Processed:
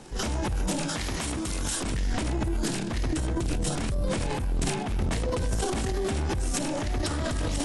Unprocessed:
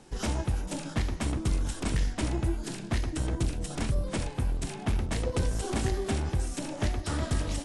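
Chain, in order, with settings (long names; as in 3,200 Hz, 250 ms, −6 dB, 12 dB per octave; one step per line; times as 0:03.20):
0:00.88–0:01.82: spectral tilt +2 dB per octave
brickwall limiter −27 dBFS, peak gain reduction 10.5 dB
transient designer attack −6 dB, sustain +9 dB
level +7 dB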